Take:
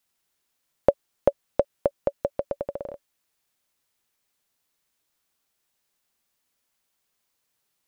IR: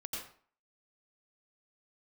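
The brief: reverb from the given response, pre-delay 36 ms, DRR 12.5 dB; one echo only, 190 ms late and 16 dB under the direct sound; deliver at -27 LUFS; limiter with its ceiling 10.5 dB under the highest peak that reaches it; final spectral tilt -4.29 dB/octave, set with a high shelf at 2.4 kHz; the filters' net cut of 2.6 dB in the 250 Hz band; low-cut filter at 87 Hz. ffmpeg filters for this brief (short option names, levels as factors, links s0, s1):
-filter_complex "[0:a]highpass=87,equalizer=f=250:t=o:g=-3.5,highshelf=f=2400:g=-5.5,alimiter=limit=0.2:level=0:latency=1,aecho=1:1:190:0.158,asplit=2[s0][s1];[1:a]atrim=start_sample=2205,adelay=36[s2];[s1][s2]afir=irnorm=-1:irlink=0,volume=0.237[s3];[s0][s3]amix=inputs=2:normalize=0,volume=2.37"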